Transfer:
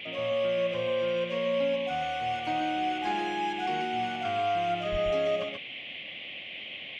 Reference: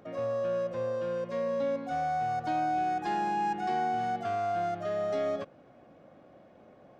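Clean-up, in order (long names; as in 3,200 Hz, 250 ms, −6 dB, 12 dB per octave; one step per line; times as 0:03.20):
0:04.91–0:05.03: high-pass filter 140 Hz 24 dB per octave
noise reduction from a noise print 15 dB
echo removal 132 ms −4.5 dB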